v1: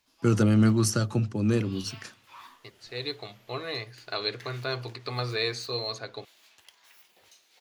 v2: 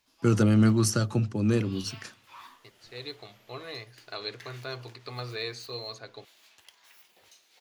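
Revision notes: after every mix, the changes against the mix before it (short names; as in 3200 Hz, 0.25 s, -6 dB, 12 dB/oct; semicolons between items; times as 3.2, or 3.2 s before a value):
second voice -6.0 dB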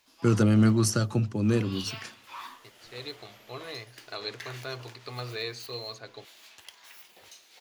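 background +6.5 dB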